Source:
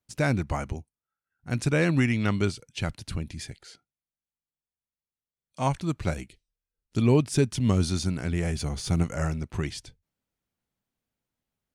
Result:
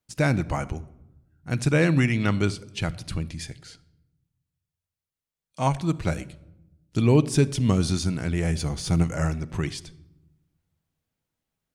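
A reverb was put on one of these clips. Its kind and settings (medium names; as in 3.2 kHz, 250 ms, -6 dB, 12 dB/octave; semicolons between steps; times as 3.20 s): simulated room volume 3500 m³, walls furnished, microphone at 0.61 m; trim +2 dB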